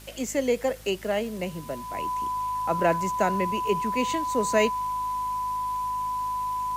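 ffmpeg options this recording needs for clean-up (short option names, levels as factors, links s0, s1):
-af "adeclick=t=4,bandreject=f=52.2:t=h:w=4,bandreject=f=104.4:t=h:w=4,bandreject=f=156.6:t=h:w=4,bandreject=f=208.8:t=h:w=4,bandreject=f=261:t=h:w=4,bandreject=f=1000:w=30,afwtdn=0.0035"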